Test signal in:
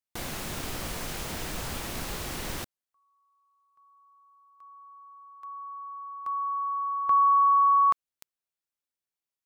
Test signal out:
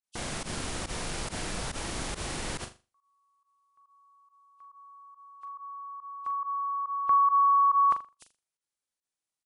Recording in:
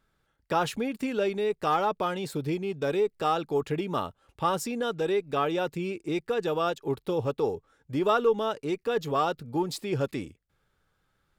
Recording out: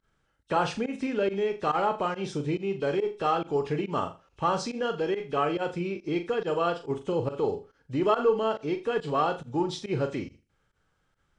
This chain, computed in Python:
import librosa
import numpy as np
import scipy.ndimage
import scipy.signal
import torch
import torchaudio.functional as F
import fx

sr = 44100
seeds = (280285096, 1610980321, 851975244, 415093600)

y = fx.freq_compress(x, sr, knee_hz=2500.0, ratio=1.5)
y = fx.room_flutter(y, sr, wall_m=7.0, rt60_s=0.29)
y = fx.volume_shaper(y, sr, bpm=140, per_beat=1, depth_db=-20, release_ms=76.0, shape='fast start')